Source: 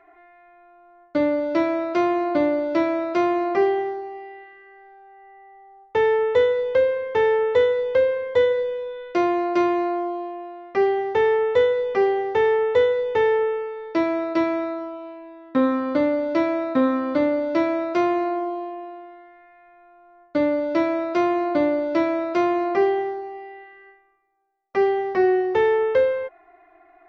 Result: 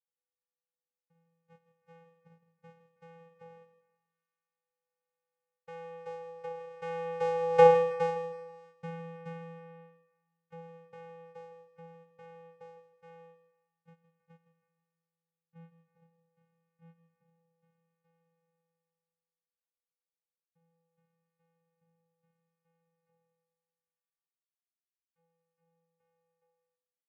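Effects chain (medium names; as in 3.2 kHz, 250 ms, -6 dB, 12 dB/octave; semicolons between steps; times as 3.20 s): Doppler pass-by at 7.66 s, 16 m/s, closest 1.4 m; band-stop 620 Hz, Q 12; gate -56 dBFS, range -16 dB; peaking EQ 1.9 kHz +7 dB 2.7 oct; vocoder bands 4, square 166 Hz; on a send: feedback delay 161 ms, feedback 36%, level -13 dB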